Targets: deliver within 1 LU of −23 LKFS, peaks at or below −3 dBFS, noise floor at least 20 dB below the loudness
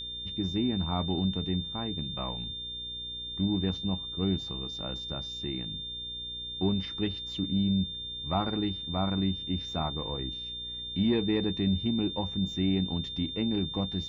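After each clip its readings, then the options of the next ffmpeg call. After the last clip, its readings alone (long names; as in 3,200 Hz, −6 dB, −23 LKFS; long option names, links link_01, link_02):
mains hum 60 Hz; hum harmonics up to 480 Hz; level of the hum −48 dBFS; interfering tone 3,600 Hz; level of the tone −36 dBFS; integrated loudness −31.0 LKFS; sample peak −16.0 dBFS; target loudness −23.0 LKFS
→ -af "bandreject=frequency=60:width_type=h:width=4,bandreject=frequency=120:width_type=h:width=4,bandreject=frequency=180:width_type=h:width=4,bandreject=frequency=240:width_type=h:width=4,bandreject=frequency=300:width_type=h:width=4,bandreject=frequency=360:width_type=h:width=4,bandreject=frequency=420:width_type=h:width=4,bandreject=frequency=480:width_type=h:width=4"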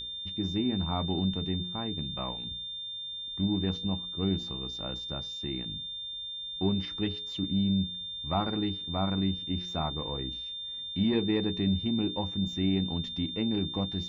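mains hum none found; interfering tone 3,600 Hz; level of the tone −36 dBFS
→ -af "bandreject=frequency=3600:width=30"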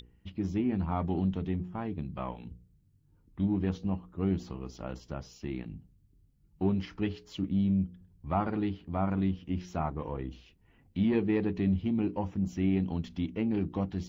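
interfering tone none found; integrated loudness −32.5 LKFS; sample peak −17.0 dBFS; target loudness −23.0 LKFS
→ -af "volume=9.5dB"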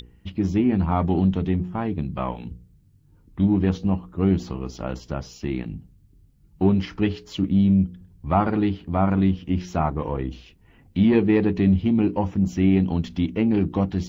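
integrated loudness −23.0 LKFS; sample peak −7.5 dBFS; background noise floor −56 dBFS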